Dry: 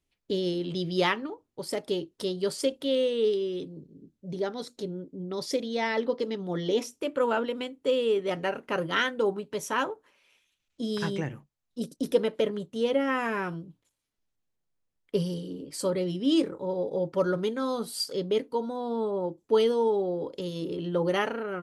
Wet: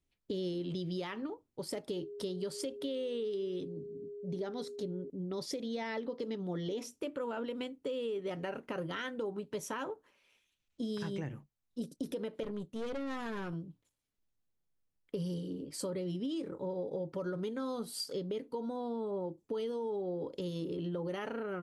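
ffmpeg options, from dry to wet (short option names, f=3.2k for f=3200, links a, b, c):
-filter_complex "[0:a]asettb=1/sr,asplit=3[a][b][c];[a]atrim=end=1.924[d];[b]atrim=start=1.92:end=5.1,asetpts=PTS-STARTPTS,afade=t=in:d=0.004:c=qsin,afade=t=out:st=3.176:d=0.004:c=qsin,aeval=exprs='val(0)+0.0112*sin(2*PI*410*n/s)':c=same[e];[c]atrim=start=5.096[f];[d][e]acrossfade=d=0.004:c1=hsin:c2=qsin[g];[g][f]acrossfade=d=0.004:c1=qsin:c2=hsin,asettb=1/sr,asplit=3[h][i][j];[h]atrim=end=12.434[k];[i]atrim=start=12.43:end=13.53,asetpts=PTS-STARTPTS,afade=t=in:d=0.004:c=qsin,afade=t=out:st=1.096:d=0.004:c=qsin,aeval=exprs='(tanh(31.6*val(0)+0.45)-tanh(0.45))/31.6':c=same[l];[j]atrim=start=13.526[m];[k][l]acrossfade=d=0.004:c1=hsin:c2=qsin[n];[n][m]acrossfade=d=0.004:c1=qsin:c2=hsin,alimiter=limit=-22dB:level=0:latency=1:release=94,lowshelf=f=380:g=5,acompressor=threshold=-28dB:ratio=6,volume=-5.5dB"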